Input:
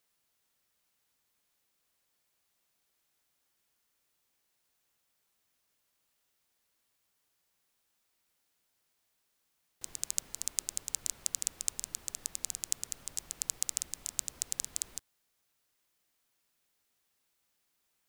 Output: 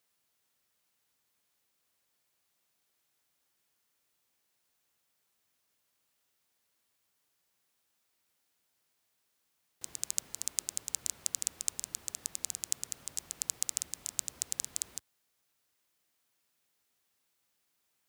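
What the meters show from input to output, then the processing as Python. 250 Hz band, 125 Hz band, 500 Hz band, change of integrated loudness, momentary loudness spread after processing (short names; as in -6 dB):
0.0 dB, -1.0 dB, 0.0 dB, 0.0 dB, 6 LU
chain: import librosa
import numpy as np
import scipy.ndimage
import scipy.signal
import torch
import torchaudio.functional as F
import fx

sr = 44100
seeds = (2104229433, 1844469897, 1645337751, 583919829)

y = scipy.signal.sosfilt(scipy.signal.butter(2, 62.0, 'highpass', fs=sr, output='sos'), x)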